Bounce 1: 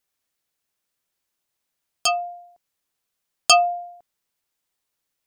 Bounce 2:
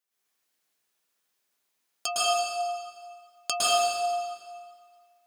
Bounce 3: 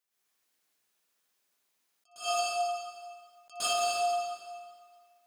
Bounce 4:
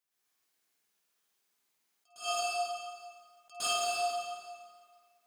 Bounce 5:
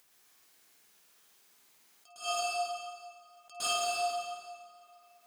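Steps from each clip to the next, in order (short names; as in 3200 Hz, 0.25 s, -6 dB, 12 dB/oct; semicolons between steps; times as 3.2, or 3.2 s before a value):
compressor, threshold -22 dBFS, peak gain reduction 11 dB; HPF 270 Hz 6 dB/oct; reverb RT60 1.9 s, pre-delay 0.105 s, DRR -10 dB; gain -6.5 dB
limiter -20.5 dBFS, peak gain reduction 8.5 dB; flutter echo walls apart 10.4 m, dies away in 0.23 s; attack slew limiter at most 190 dB/s
notch 570 Hz, Q 14; on a send: flutter echo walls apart 8.7 m, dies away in 0.48 s; on the sum: gain -2.5 dB
upward compressor, threshold -51 dBFS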